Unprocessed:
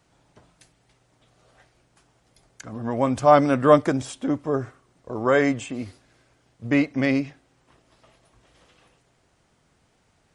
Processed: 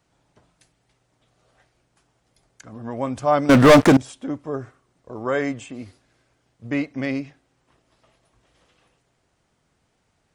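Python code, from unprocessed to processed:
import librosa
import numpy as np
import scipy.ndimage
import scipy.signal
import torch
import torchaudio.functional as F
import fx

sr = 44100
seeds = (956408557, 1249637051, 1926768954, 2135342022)

y = fx.leveller(x, sr, passes=5, at=(3.49, 3.97))
y = y * librosa.db_to_amplitude(-4.0)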